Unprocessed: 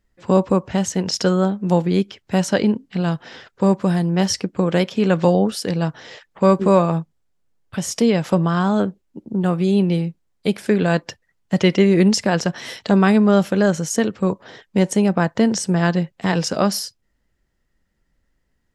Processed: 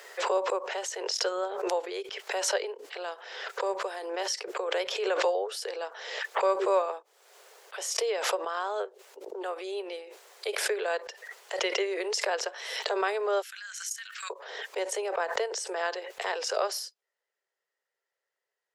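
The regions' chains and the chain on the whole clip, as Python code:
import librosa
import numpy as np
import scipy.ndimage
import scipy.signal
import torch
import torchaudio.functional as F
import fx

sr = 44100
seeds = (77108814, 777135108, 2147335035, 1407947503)

y = fx.chain(x, sr, fx.high_shelf(hz=9000.0, db=11.0),
    fx.level_steps(step_db=10),
    fx.cheby1_highpass(hz=1500.0, order=4), at=(13.42, 14.3))
y = scipy.signal.sosfilt(scipy.signal.butter(12, 400.0, 'highpass', fs=sr, output='sos'), y)
y = fx.high_shelf(y, sr, hz=9400.0, db=-3.0)
y = fx.pre_swell(y, sr, db_per_s=43.0)
y = y * librosa.db_to_amplitude(-9.0)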